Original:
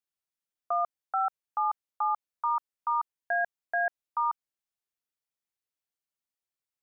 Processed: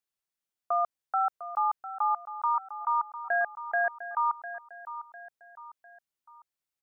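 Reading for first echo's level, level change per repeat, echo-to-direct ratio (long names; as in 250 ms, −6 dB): −12.5 dB, −7.5 dB, −11.5 dB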